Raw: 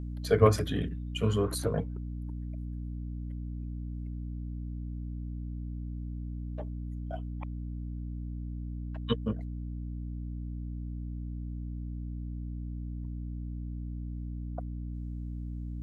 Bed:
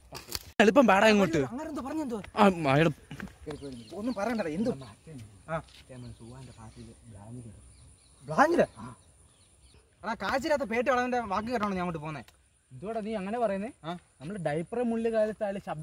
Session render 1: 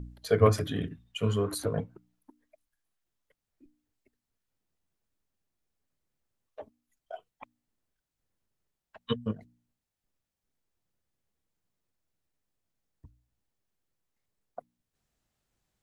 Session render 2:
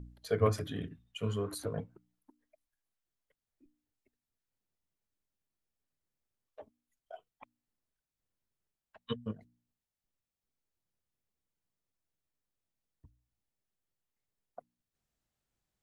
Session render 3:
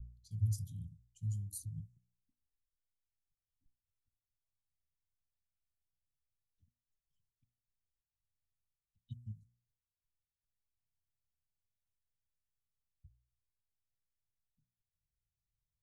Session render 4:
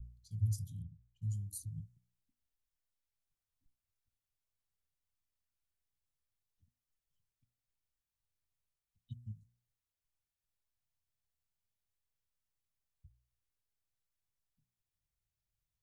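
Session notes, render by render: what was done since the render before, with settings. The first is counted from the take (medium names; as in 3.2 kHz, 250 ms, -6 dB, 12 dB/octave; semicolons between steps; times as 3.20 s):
de-hum 60 Hz, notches 5
trim -6.5 dB
level-controlled noise filter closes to 2.7 kHz, open at -34.5 dBFS; inverse Chebyshev band-stop 550–1600 Hz, stop band 80 dB
0.82–1.22 s: distance through air 380 m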